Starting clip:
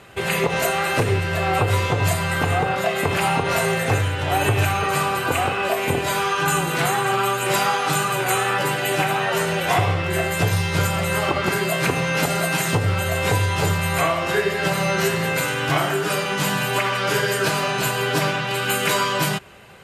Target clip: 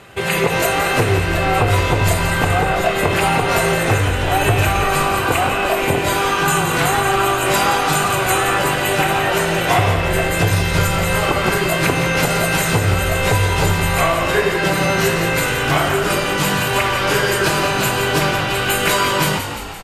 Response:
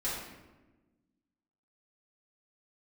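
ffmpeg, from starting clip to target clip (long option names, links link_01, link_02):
-filter_complex "[0:a]asplit=9[link_01][link_02][link_03][link_04][link_05][link_06][link_07][link_08][link_09];[link_02]adelay=172,afreqshift=-51,volume=-8.5dB[link_10];[link_03]adelay=344,afreqshift=-102,volume=-12.7dB[link_11];[link_04]adelay=516,afreqshift=-153,volume=-16.8dB[link_12];[link_05]adelay=688,afreqshift=-204,volume=-21dB[link_13];[link_06]adelay=860,afreqshift=-255,volume=-25.1dB[link_14];[link_07]adelay=1032,afreqshift=-306,volume=-29.3dB[link_15];[link_08]adelay=1204,afreqshift=-357,volume=-33.4dB[link_16];[link_09]adelay=1376,afreqshift=-408,volume=-37.6dB[link_17];[link_01][link_10][link_11][link_12][link_13][link_14][link_15][link_16][link_17]amix=inputs=9:normalize=0,volume=3.5dB"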